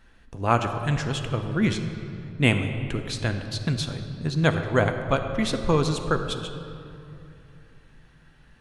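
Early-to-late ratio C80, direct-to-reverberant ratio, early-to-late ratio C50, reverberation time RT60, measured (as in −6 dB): 8.5 dB, 6.0 dB, 7.5 dB, 2.7 s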